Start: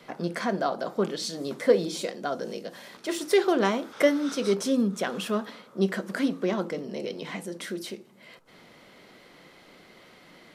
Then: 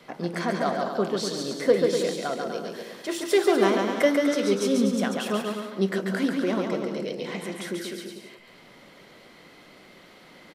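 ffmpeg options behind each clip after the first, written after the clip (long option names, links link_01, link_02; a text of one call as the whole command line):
ffmpeg -i in.wav -af "aecho=1:1:140|245|323.8|382.8|427.1:0.631|0.398|0.251|0.158|0.1" out.wav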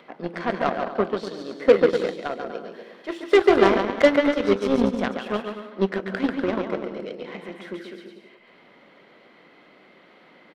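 ffmpeg -i in.wav -filter_complex "[0:a]acompressor=mode=upward:threshold=-42dB:ratio=2.5,acrossover=split=170 3500:gain=0.178 1 0.1[link_01][link_02][link_03];[link_01][link_02][link_03]amix=inputs=3:normalize=0,aeval=exprs='0.355*(cos(1*acos(clip(val(0)/0.355,-1,1)))-cos(1*PI/2))+0.0316*(cos(7*acos(clip(val(0)/0.355,-1,1)))-cos(7*PI/2))':channel_layout=same,volume=5dB" out.wav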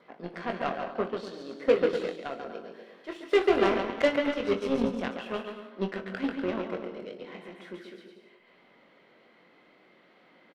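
ffmpeg -i in.wav -filter_complex "[0:a]adynamicequalizer=threshold=0.00398:dfrequency=2700:dqfactor=5.5:tfrequency=2700:tqfactor=5.5:attack=5:release=100:ratio=0.375:range=3:mode=boostabove:tftype=bell,asplit=2[link_01][link_02];[link_02]aecho=0:1:22|61:0.447|0.158[link_03];[link_01][link_03]amix=inputs=2:normalize=0,volume=-8dB" out.wav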